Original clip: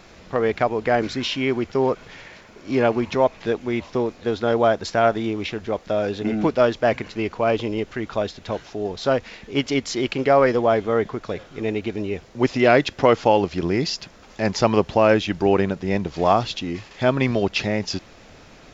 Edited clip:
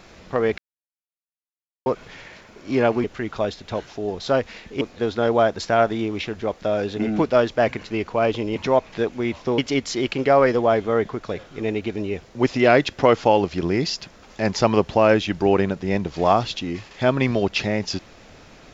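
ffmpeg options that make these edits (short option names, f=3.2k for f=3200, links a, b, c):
-filter_complex "[0:a]asplit=7[a][b][c][d][e][f][g];[a]atrim=end=0.58,asetpts=PTS-STARTPTS,afade=t=out:st=0.576:d=0.004:c=hsin[h];[b]atrim=start=0.58:end=1.86,asetpts=PTS-STARTPTS,volume=0[i];[c]atrim=start=1.86:end=3.042,asetpts=PTS-STARTPTS,afade=t=in:d=0.004:c=hsin[j];[d]atrim=start=7.808:end=9.582[k];[e]atrim=start=4.058:end=7.812[l];[f]atrim=start=3.038:end=4.062[m];[g]atrim=start=9.578[n];[h][i][j]concat=n=3:v=0:a=1[o];[o][k]acrossfade=d=0.004:c1=hsin:c2=hsin[p];[p][l]acrossfade=d=0.004:c1=hsin:c2=hsin[q];[q][m]acrossfade=d=0.004:c1=hsin:c2=hsin[r];[r][n]acrossfade=d=0.004:c1=hsin:c2=hsin"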